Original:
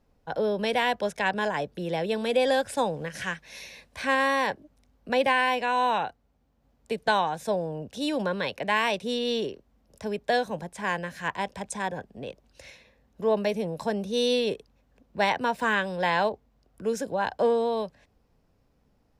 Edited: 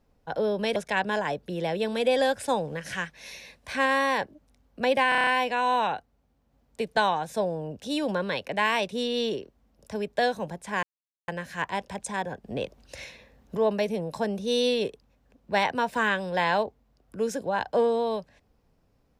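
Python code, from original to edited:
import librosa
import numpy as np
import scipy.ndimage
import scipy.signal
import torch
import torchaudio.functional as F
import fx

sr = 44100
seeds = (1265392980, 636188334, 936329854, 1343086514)

y = fx.edit(x, sr, fx.cut(start_s=0.76, length_s=0.29),
    fx.stutter(start_s=5.38, slice_s=0.03, count=7),
    fx.insert_silence(at_s=10.94, length_s=0.45),
    fx.clip_gain(start_s=12.1, length_s=1.13, db=6.5), tone=tone)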